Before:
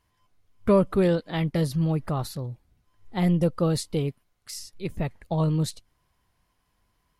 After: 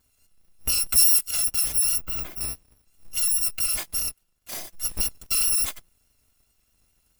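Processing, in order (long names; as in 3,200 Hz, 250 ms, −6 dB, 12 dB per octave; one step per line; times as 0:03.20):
samples in bit-reversed order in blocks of 256 samples
0:03.66–0:04.52: tube saturation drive 23 dB, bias 0.55
brickwall limiter −19 dBFS, peak gain reduction 10.5 dB
0:01.98–0:02.41: parametric band 7,700 Hz −15 dB 2.4 octaves
pitch vibrato 4.8 Hz 31 cents
0:00.89–0:01.31: high-shelf EQ 5,000 Hz +7 dB
level +4.5 dB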